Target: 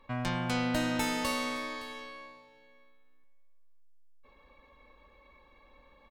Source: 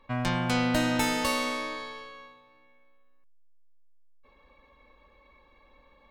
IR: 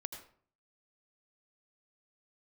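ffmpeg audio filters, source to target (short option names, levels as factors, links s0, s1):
-filter_complex "[0:a]asplit=2[s0][s1];[s1]acompressor=threshold=0.00794:ratio=6,volume=0.794[s2];[s0][s2]amix=inputs=2:normalize=0,aecho=1:1:565:0.119,volume=0.531"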